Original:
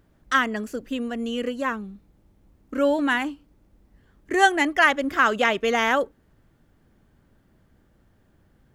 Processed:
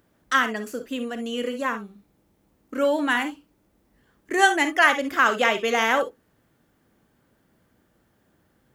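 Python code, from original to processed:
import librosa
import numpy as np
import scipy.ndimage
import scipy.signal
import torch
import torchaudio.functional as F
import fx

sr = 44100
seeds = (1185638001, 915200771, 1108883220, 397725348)

y = fx.highpass(x, sr, hz=220.0, slope=6)
y = fx.high_shelf(y, sr, hz=8200.0, db=6.0)
y = fx.rev_gated(y, sr, seeds[0], gate_ms=80, shape='rising', drr_db=8.5)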